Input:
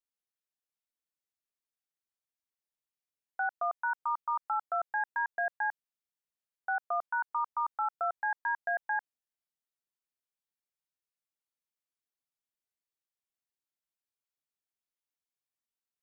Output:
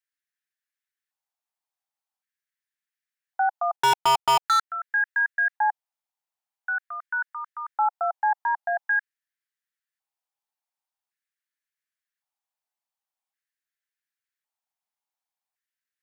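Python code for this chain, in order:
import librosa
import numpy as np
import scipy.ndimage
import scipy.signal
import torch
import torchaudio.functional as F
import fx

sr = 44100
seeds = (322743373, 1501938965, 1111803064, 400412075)

y = fx.filter_lfo_highpass(x, sr, shape='square', hz=0.45, low_hz=800.0, high_hz=1700.0, q=4.2)
y = fx.leveller(y, sr, passes=5, at=(3.76, 4.7))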